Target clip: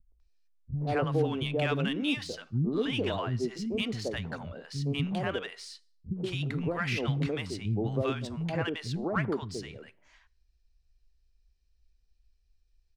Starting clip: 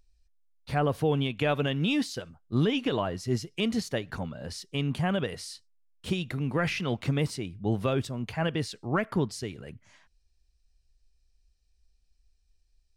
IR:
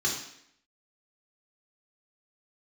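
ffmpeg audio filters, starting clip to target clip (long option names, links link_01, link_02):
-filter_complex "[0:a]asplit=2[link_01][link_02];[1:a]atrim=start_sample=2205,asetrate=61740,aresample=44100[link_03];[link_02][link_03]afir=irnorm=-1:irlink=0,volume=-25dB[link_04];[link_01][link_04]amix=inputs=2:normalize=0,adynamicsmooth=sensitivity=5:basefreq=5900,acrossover=split=230|780[link_05][link_06][link_07];[link_06]adelay=120[link_08];[link_07]adelay=200[link_09];[link_05][link_08][link_09]amix=inputs=3:normalize=0"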